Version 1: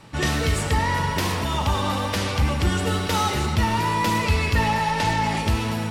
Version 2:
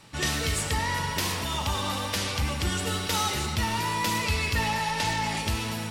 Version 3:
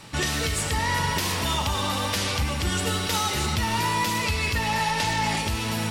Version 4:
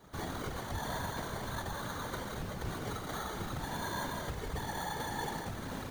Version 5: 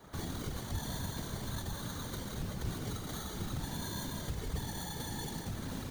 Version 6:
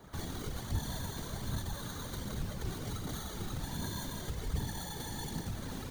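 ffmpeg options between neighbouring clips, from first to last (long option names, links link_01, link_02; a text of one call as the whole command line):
ffmpeg -i in.wav -af "highshelf=frequency=2300:gain=9.5,volume=-7.5dB" out.wav
ffmpeg -i in.wav -af "alimiter=limit=-22.5dB:level=0:latency=1:release=494,volume=7.5dB" out.wav
ffmpeg -i in.wav -af "acrusher=samples=17:mix=1:aa=0.000001,afftfilt=real='hypot(re,im)*cos(2*PI*random(0))':imag='hypot(re,im)*sin(2*PI*random(1))':win_size=512:overlap=0.75,volume=-7dB" out.wav
ffmpeg -i in.wav -filter_complex "[0:a]acrossover=split=330|3000[link_01][link_02][link_03];[link_02]acompressor=threshold=-51dB:ratio=5[link_04];[link_01][link_04][link_03]amix=inputs=3:normalize=0,volume=2.5dB" out.wav
ffmpeg -i in.wav -af "flanger=delay=0:depth=2.8:regen=67:speed=1.3:shape=triangular,volume=4dB" out.wav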